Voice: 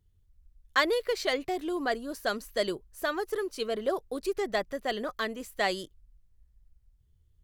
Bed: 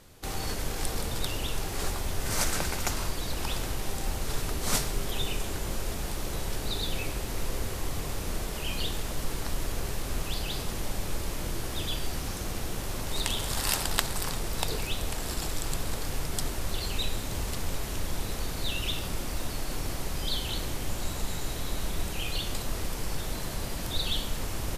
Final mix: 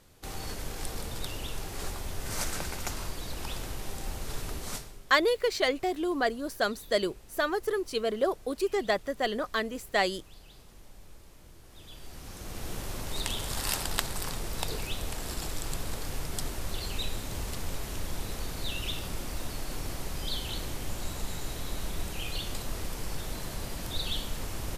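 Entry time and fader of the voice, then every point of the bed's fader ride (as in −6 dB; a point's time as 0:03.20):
4.35 s, +2.0 dB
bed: 0:04.58 −5 dB
0:05.04 −21 dB
0:11.63 −21 dB
0:12.71 −3 dB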